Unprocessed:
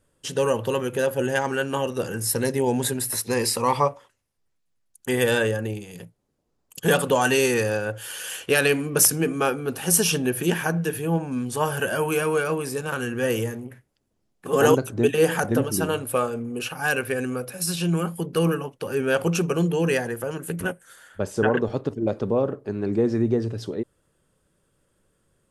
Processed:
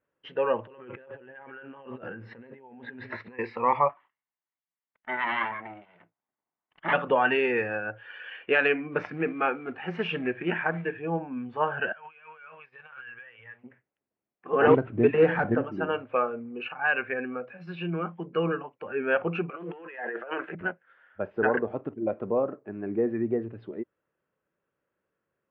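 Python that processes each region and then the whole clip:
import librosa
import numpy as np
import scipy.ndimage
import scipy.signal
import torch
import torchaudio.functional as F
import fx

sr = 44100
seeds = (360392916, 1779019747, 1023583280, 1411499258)

y = fx.chain(x, sr, fx.lowpass(hz=5200.0, slope=12),
    fx.echo_single(ms=140, db=-18.5),
    fx.over_compress(threshold_db=-35.0, ratio=-1.0), at=(0.67, 3.39))
y = fx.chain(y, sr, fx.lower_of_two(delay_ms=1.0),
    fx.low_shelf(hz=160.0, db=-11.5),
    fx.small_body(hz=(1500.0, 3500.0), ring_ms=45, db=10), at=(3.89, 6.93))
y = fx.chain(y, sr, fx.quant_float(bits=2),
    fx.doppler_dist(depth_ms=0.12), at=(8.92, 10.95))
y = fx.chain(y, sr, fx.tone_stack(knobs='10-0-10'),
    fx.over_compress(threshold_db=-41.0, ratio=-1.0), at=(11.92, 13.64))
y = fx.chain(y, sr, fx.cvsd(bps=32000),
    fx.low_shelf(hz=260.0, db=11.5), at=(14.67, 15.55))
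y = fx.chain(y, sr, fx.highpass(hz=420.0, slope=12),
    fx.leveller(passes=2),
    fx.over_compress(threshold_db=-31.0, ratio=-1.0), at=(19.5, 20.55))
y = fx.highpass(y, sr, hz=480.0, slope=6)
y = fx.noise_reduce_blind(y, sr, reduce_db=8)
y = scipy.signal.sosfilt(scipy.signal.butter(6, 2600.0, 'lowpass', fs=sr, output='sos'), y)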